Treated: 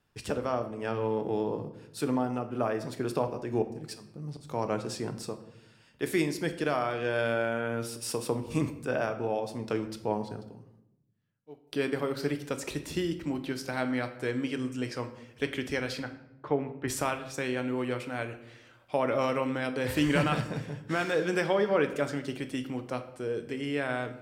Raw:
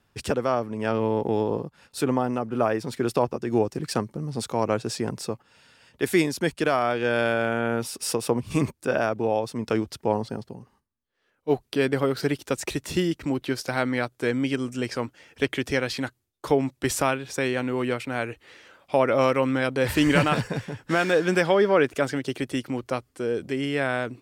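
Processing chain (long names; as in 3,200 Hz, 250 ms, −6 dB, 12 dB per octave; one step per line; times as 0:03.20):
0:03.62–0:04.47: volume swells 423 ms
0:10.09–0:11.67: fade out
0:16.00–0:16.88: Chebyshev band-pass filter 110–1,900 Hz, order 2
rectangular room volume 230 cubic metres, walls mixed, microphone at 0.45 metres
level −7 dB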